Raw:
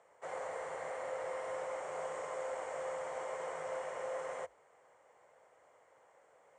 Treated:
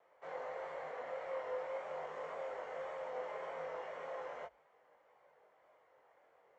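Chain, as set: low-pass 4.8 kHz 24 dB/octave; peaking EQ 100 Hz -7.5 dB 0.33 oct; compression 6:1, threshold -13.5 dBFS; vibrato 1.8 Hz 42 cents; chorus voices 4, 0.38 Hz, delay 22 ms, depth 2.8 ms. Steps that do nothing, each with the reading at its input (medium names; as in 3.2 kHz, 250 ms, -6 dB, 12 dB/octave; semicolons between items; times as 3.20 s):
compression, threshold -13.5 dBFS: peak at its input -28.5 dBFS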